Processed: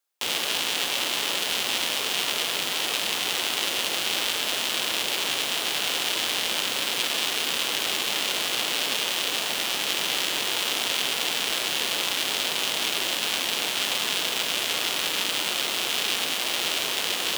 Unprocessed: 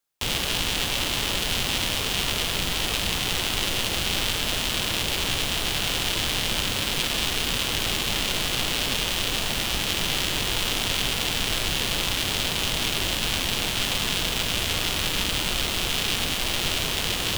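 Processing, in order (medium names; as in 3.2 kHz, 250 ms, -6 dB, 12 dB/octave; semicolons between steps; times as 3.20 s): high-pass 350 Hz 12 dB/octave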